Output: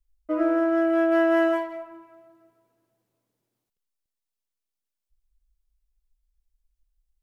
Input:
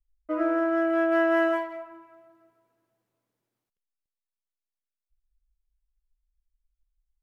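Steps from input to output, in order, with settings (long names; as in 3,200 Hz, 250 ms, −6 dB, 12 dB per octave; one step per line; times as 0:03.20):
parametric band 1,500 Hz −5 dB 1.9 octaves
level +4 dB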